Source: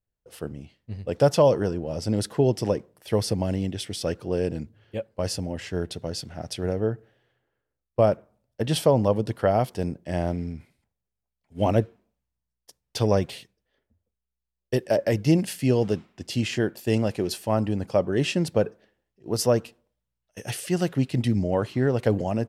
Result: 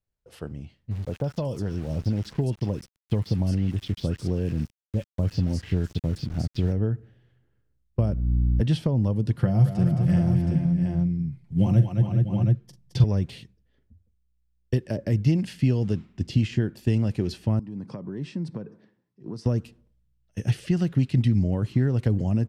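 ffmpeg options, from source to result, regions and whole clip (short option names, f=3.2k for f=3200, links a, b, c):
-filter_complex "[0:a]asettb=1/sr,asplit=3[a][b][c];[a]atrim=end=0.914[d];[b]atrim=start=0.91:end=6.72,asetpts=PTS-STARTPTS,afade=t=in:d=0.004:c=qsin,afade=t=out:st=5.806:d=0.004:c=qsin,acrossover=split=1300|5100[e][f][g];[f]adelay=40[h];[g]adelay=250[i];[e][h][i]amix=inputs=3:normalize=0,atrim=end_sample=256221,aeval=exprs='val(0)*gte(abs(val(0)),0.00944)':c=same[j];[c]atrim=start=6.716[k];[d][j]acrossfade=d=0.004:c1=hsin:c2=qsin[l];[l][k]acrossfade=d=0.004:c1=qsin:c2=hsin,asettb=1/sr,asplit=3[m][n][o];[m]atrim=end=8.004[p];[n]atrim=start=8:end=8.61,asetpts=PTS-STARTPTS,afade=t=in:d=0.004:c=qsin,afade=t=out:st=0.606:d=0.004:c=qsin,highshelf=f=5.7k:g=-4,aeval=exprs='val(0)+0.0224*(sin(2*PI*60*n/s)+sin(2*PI*2*60*n/s)/2+sin(2*PI*3*60*n/s)/3+sin(2*PI*4*60*n/s)/4+sin(2*PI*5*60*n/s)/5)':c=same[q];[o]atrim=start=8.606[r];[p][q]acrossfade=d=0.004:c1=hsin:c2=qsin[s];[s][r]acrossfade=d=0.004:c1=qsin:c2=hsin,asettb=1/sr,asplit=3[t][u][v];[t]atrim=end=9.374[w];[u]atrim=start=9.37:end=13.04,asetpts=PTS-STARTPTS,afade=t=in:d=0.004:c=qsin,afade=t=out:st=3.666:d=0.004:c=qsin,equalizer=f=130:w=2.4:g=13.5,aecho=1:1:5.7:0.6,atrim=end_sample=161847,aecho=1:1:43|217|368|418|642|721:0.266|0.355|0.133|0.211|0.119|0.282,atrim=end_sample=161847[x];[v]atrim=start=13.036[y];[w][x]acrossfade=d=0.004:c1=hsin:c2=qsin[z];[z][y]acrossfade=d=0.004:c1=qsin:c2=hsin,asettb=1/sr,asplit=3[aa][ab][ac];[aa]atrim=end=17.594[ad];[ab]atrim=start=17.59:end=19.46,asetpts=PTS-STARTPTS,afade=t=in:d=0.004:c=qsin,afade=t=out:st=1.866:d=0.004:c=qsin,acompressor=threshold=-38dB:ratio=4:attack=3.2:release=140:knee=1:detection=peak,highpass=f=140:w=0.5412,highpass=f=140:w=1.3066,equalizer=f=1k:t=q:w=4:g=8,equalizer=f=2.9k:t=q:w=4:g=-7,equalizer=f=6.9k:t=q:w=4:g=-7,lowpass=f=8.8k:w=0.5412,lowpass=f=8.8k:w=1.3066[ae];[ac]atrim=start=19.456[af];[ad][ae]acrossfade=d=0.004:c1=hsin:c2=qsin[ag];[ag][af]acrossfade=d=0.004:c1=qsin:c2=hsin,highshelf=f=10k:g=-9,acrossover=split=600|5400[ah][ai][aj];[ah]acompressor=threshold=-31dB:ratio=4[ak];[ai]acompressor=threshold=-36dB:ratio=4[al];[aj]acompressor=threshold=-54dB:ratio=4[am];[ak][al][am]amix=inputs=3:normalize=0,asubboost=boost=7:cutoff=230,volume=-1dB"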